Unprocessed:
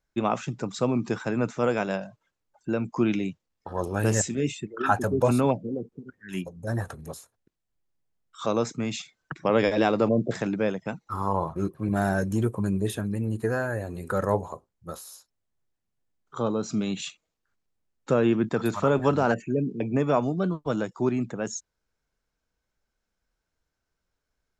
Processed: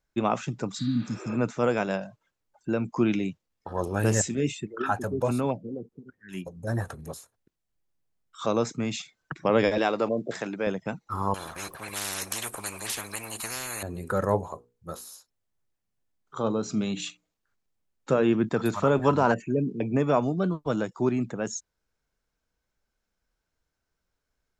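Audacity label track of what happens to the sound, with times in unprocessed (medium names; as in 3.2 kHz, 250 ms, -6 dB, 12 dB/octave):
0.810000	1.330000	spectral replace 310–4800 Hz
4.840000	6.460000	gain -4.5 dB
9.780000	10.670000	high-pass 480 Hz 6 dB/octave
11.340000	13.830000	spectrum-flattening compressor 10:1
14.500000	18.340000	hum notches 60/120/180/240/300/360/420/480 Hz
19.080000	19.700000	peaking EQ 990 Hz +9.5 dB 0.23 oct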